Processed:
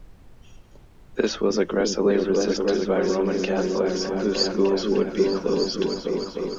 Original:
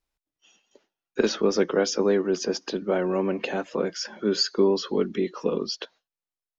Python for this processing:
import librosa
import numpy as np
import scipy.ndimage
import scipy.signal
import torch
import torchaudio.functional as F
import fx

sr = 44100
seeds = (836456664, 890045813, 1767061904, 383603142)

y = fx.echo_opening(x, sr, ms=303, hz=200, octaves=2, feedback_pct=70, wet_db=0)
y = fx.dmg_noise_colour(y, sr, seeds[0], colour='brown', level_db=-46.0)